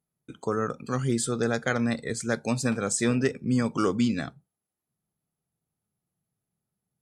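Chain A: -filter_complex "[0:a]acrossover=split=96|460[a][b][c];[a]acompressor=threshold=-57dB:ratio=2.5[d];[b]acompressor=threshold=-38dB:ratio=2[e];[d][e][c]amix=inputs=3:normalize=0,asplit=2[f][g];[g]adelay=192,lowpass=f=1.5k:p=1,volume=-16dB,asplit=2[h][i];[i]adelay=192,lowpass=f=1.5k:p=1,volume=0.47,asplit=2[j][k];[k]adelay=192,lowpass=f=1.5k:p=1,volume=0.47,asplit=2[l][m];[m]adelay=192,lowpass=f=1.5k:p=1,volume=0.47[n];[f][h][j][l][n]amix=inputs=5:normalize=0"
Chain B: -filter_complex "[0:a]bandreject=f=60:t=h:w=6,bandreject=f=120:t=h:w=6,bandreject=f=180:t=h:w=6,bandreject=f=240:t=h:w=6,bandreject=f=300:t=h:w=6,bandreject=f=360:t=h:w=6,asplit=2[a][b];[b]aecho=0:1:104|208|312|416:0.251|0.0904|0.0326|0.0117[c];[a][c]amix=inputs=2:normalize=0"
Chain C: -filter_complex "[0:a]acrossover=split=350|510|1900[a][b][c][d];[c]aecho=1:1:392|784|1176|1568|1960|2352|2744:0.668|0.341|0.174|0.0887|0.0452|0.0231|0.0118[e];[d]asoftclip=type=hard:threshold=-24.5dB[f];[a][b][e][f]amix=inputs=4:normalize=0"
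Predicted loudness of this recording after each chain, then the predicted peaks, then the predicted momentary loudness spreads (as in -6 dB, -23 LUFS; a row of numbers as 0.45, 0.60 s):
-30.5, -28.0, -27.5 LUFS; -13.5, -11.5, -11.5 dBFS; 6, 6, 12 LU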